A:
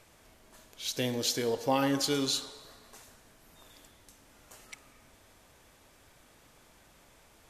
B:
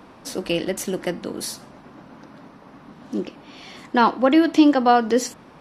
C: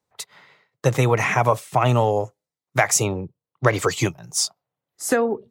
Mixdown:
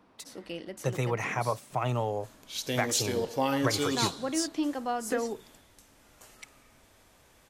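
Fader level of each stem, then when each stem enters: -0.5 dB, -16.0 dB, -11.5 dB; 1.70 s, 0.00 s, 0.00 s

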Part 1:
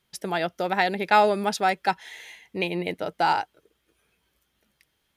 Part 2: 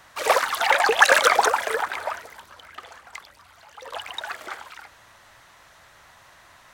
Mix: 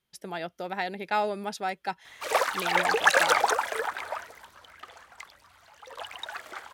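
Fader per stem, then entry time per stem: -8.5 dB, -5.5 dB; 0.00 s, 2.05 s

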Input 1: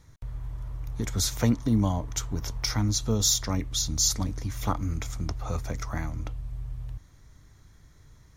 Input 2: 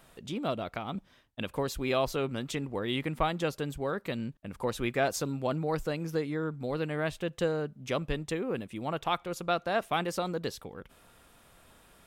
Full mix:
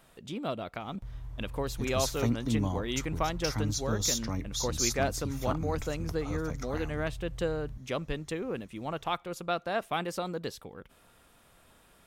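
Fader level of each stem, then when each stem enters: -6.0 dB, -2.0 dB; 0.80 s, 0.00 s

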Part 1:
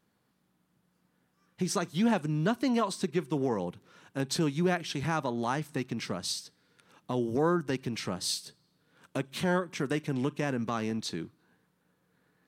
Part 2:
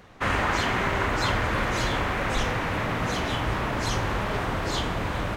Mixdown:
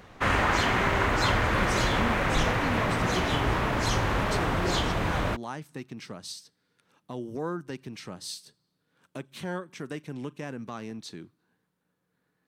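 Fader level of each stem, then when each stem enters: -6.0 dB, +0.5 dB; 0.00 s, 0.00 s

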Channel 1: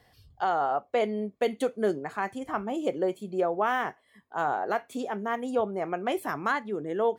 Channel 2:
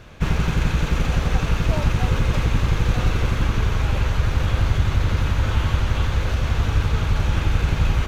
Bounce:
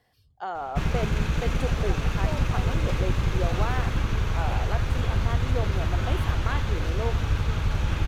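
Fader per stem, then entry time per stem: -6.0 dB, -5.0 dB; 0.00 s, 0.55 s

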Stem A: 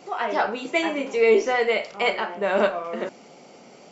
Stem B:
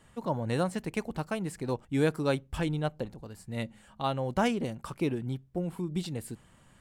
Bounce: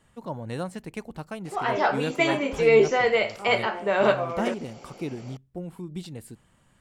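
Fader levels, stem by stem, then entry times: 0.0 dB, -3.0 dB; 1.45 s, 0.00 s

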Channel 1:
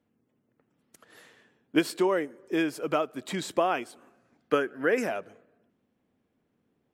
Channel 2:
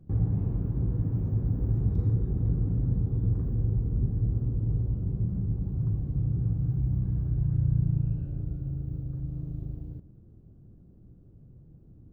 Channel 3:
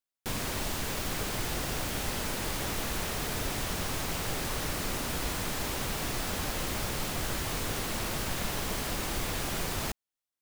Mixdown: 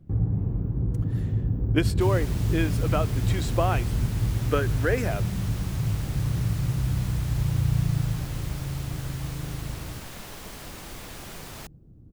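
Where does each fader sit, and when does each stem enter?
-0.5 dB, +1.5 dB, -7.5 dB; 0.00 s, 0.00 s, 1.75 s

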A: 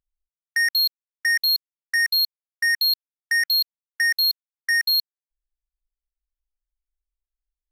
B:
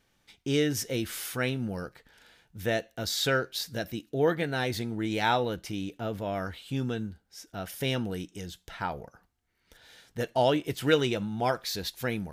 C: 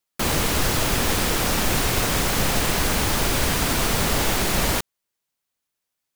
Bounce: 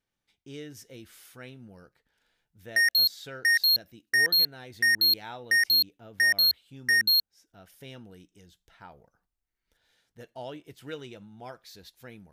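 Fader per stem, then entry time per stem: -2.0 dB, -15.5 dB, mute; 2.20 s, 0.00 s, mute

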